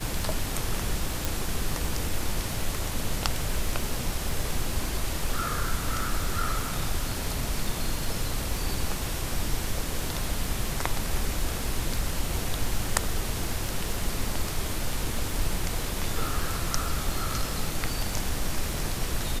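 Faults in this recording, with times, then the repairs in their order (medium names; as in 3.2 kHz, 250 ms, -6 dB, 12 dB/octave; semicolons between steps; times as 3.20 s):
crackle 30 per s -32 dBFS
1.25 s: pop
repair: de-click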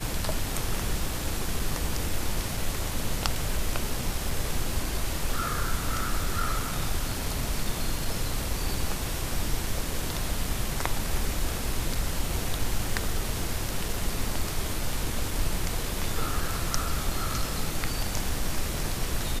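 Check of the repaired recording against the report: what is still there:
nothing left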